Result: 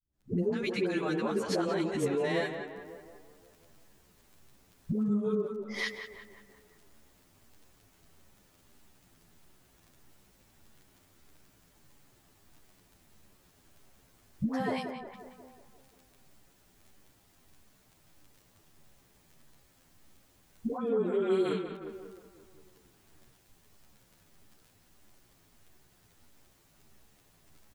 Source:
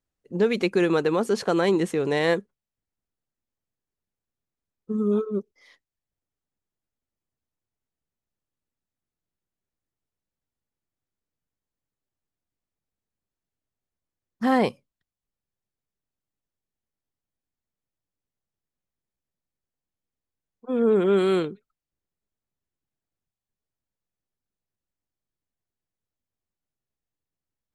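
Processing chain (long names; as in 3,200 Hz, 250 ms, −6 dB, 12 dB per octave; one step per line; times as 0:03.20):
camcorder AGC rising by 73 dB per second
notch filter 490 Hz, Q 13
all-pass dispersion highs, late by 130 ms, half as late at 500 Hz
surface crackle 12 per second −42 dBFS
downward compressor, threshold −25 dBFS, peak gain reduction 9 dB
on a send: tape delay 179 ms, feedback 62%, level −6 dB, low-pass 2,200 Hz
on the sum: barber-pole flanger 10.1 ms −1.6 Hz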